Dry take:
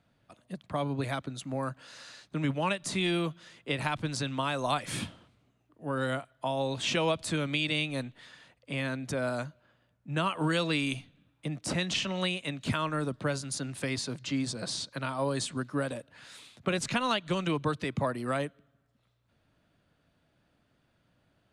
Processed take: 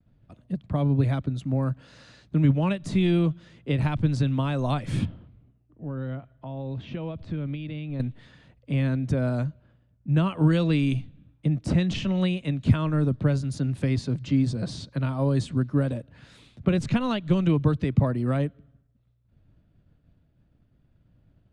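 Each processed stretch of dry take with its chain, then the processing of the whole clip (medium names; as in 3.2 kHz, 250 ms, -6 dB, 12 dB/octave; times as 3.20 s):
5.05–8.00 s: compression 2:1, threshold -42 dBFS + distance through air 220 m
whole clip: RIAA curve playback; expander -56 dBFS; peaking EQ 1.1 kHz -5 dB 2.1 oct; trim +2.5 dB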